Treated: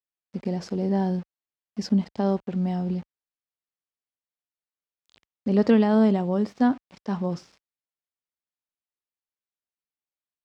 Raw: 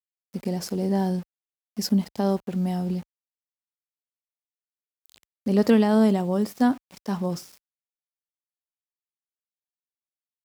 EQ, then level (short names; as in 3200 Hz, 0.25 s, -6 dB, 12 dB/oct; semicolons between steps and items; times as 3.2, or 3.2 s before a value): air absorption 140 m; 0.0 dB